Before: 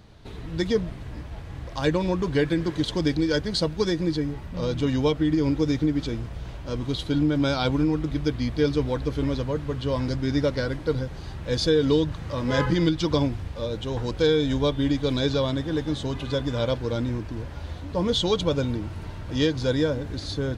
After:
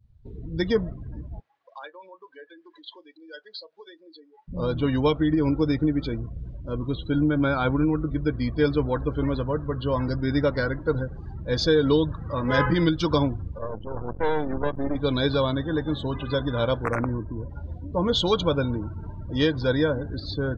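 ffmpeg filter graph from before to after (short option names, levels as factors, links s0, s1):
-filter_complex "[0:a]asettb=1/sr,asplit=3[s0][s1][s2];[s0]atrim=end=1.404[s3];[s1]atrim=start=1.4:end=4.48,asetpts=PTS-STARTPTS,afade=t=in:d=0.004:c=qsin,afade=t=out:st=3.076:d=0.004:c=qsin,acompressor=threshold=0.0316:ratio=16:attack=3.2:release=140:knee=1:detection=peak,highpass=690,lowpass=5400,asplit=2[s4][s5];[s5]adelay=37,volume=0.224[s6];[s4][s6]amix=inputs=2:normalize=0,atrim=end_sample=135828[s7];[s2]atrim=start=4.476[s8];[s3][s7]acrossfade=d=0.004:c1=hsin:c2=qsin[s9];[s9][s8]acrossfade=d=0.004:c1=qsin:c2=hsin,asettb=1/sr,asplit=3[s10][s11][s12];[s10]atrim=end=6.294[s13];[s11]atrim=start=6.29:end=8.4,asetpts=PTS-STARTPTS,afade=t=in:d=0.004:c=qsin,afade=t=out:st=2.106:d=0.004:c=qsin,acrossover=split=2700[s14][s15];[s15]acompressor=threshold=0.00794:ratio=4:attack=1:release=60[s16];[s14][s16]amix=inputs=2:normalize=0,equalizer=f=800:w=1.8:g=-2.5[s17];[s12]atrim=start=8.396[s18];[s13][s17]acrossfade=d=0.004:c1=hsin:c2=qsin[s19];[s19][s18]acrossfade=d=0.004:c1=qsin:c2=hsin,asettb=1/sr,asplit=3[s20][s21][s22];[s20]atrim=end=13.584[s23];[s21]atrim=start=13.58:end=14.96,asetpts=PTS-STARTPTS,afade=t=in:d=0.004:c=qsin,afade=t=out:st=1.376:d=0.004:c=qsin,lowpass=2000,bandreject=f=1200:w=26,aeval=exprs='max(val(0),0)':c=same[s24];[s22]atrim=start=14.956[s25];[s23][s24]acrossfade=d=0.004:c1=hsin:c2=qsin[s26];[s26][s25]acrossfade=d=0.004:c1=qsin:c2=hsin,asettb=1/sr,asplit=3[s27][s28][s29];[s27]atrim=end=16.844[s30];[s28]atrim=start=16.84:end=17.5,asetpts=PTS-STARTPTS,afade=t=in:d=0.004:c=qsin,afade=t=out:st=0.656:d=0.004:c=qsin,highshelf=f=3800:g=-8.5,aeval=exprs='(mod(8.41*val(0)+1,2)-1)/8.41':c=same,asuperstop=centerf=3600:order=4:qfactor=1.2[s31];[s29]atrim=start=17.496[s32];[s30][s31]acrossfade=d=0.004:c1=hsin:c2=qsin[s33];[s33][s32]acrossfade=d=0.004:c1=qsin:c2=hsin,adynamicequalizer=threshold=0.00708:dfrequency=1300:dqfactor=1.1:tfrequency=1300:tqfactor=1.1:attack=5:release=100:ratio=0.375:range=3:mode=boostabove:tftype=bell,afftdn=nr=29:nf=-36"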